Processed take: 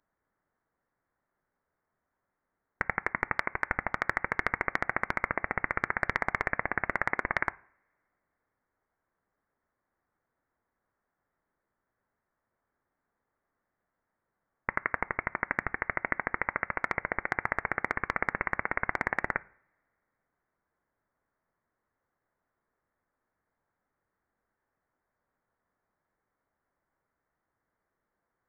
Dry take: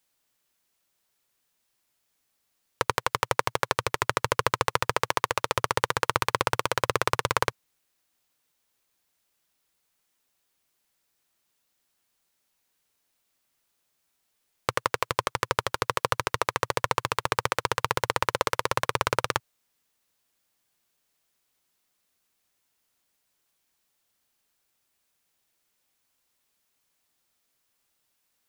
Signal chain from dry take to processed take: high-pass 1.4 kHz 24 dB/octave; two-slope reverb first 0.56 s, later 2.5 s, from -27 dB, DRR 19 dB; frequency inversion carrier 3.2 kHz; overload inside the chain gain 12.5 dB; trim +2 dB

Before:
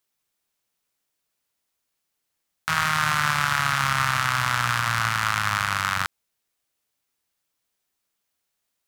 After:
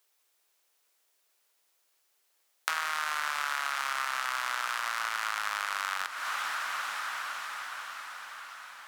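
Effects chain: echo that smears into a reverb 457 ms, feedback 68%, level -13.5 dB; compression 5:1, threshold -35 dBFS, peak gain reduction 16 dB; high-pass 370 Hz 24 dB/octave; trim +6 dB

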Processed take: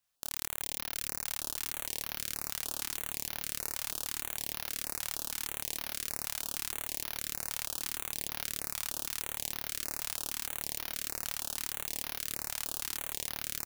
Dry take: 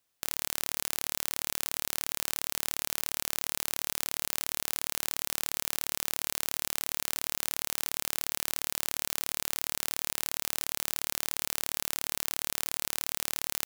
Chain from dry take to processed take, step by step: frequency-shifting echo 382 ms, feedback 52%, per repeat -60 Hz, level -11.5 dB; chorus voices 2, 0.89 Hz, delay 28 ms, depth 2.4 ms; step-sequenced notch 6.4 Hz 360–7900 Hz

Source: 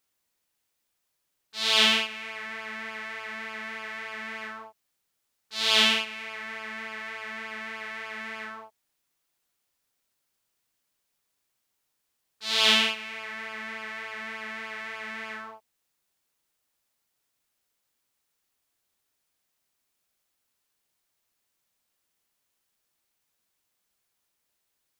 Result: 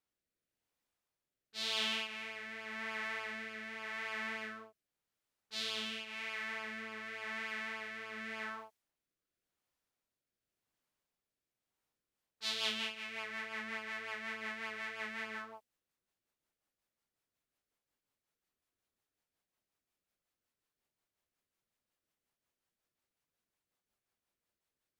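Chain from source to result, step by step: compression 5:1, threshold -28 dBFS, peak gain reduction 12.5 dB; rotary cabinet horn 0.9 Hz, later 5.5 Hz, at 11.65 s; tape noise reduction on one side only decoder only; trim -2.5 dB

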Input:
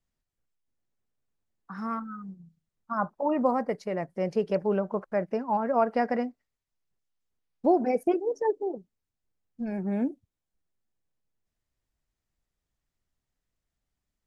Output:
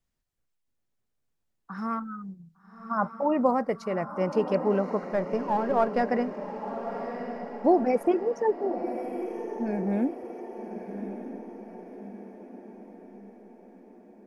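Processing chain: 5.01–6.03 s: partial rectifier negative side -3 dB; echo that smears into a reverb 1161 ms, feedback 52%, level -9 dB; trim +1.5 dB

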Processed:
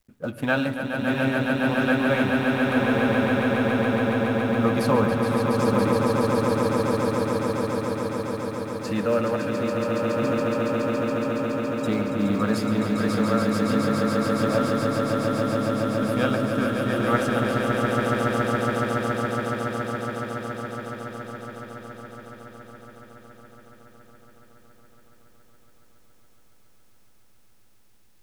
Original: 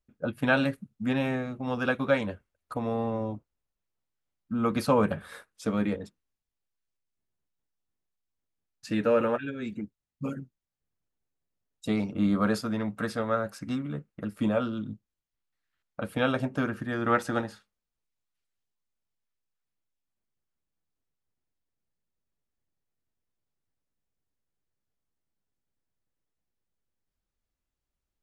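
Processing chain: companding laws mixed up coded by mu; echo with a slow build-up 140 ms, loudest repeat 8, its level -5 dB; reverberation RT60 0.70 s, pre-delay 53 ms, DRR 17.5 dB

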